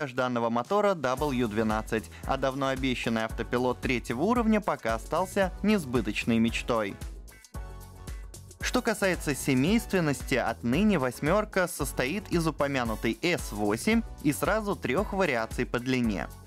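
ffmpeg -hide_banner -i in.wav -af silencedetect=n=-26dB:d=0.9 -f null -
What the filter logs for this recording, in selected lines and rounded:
silence_start: 6.92
silence_end: 8.63 | silence_duration: 1.72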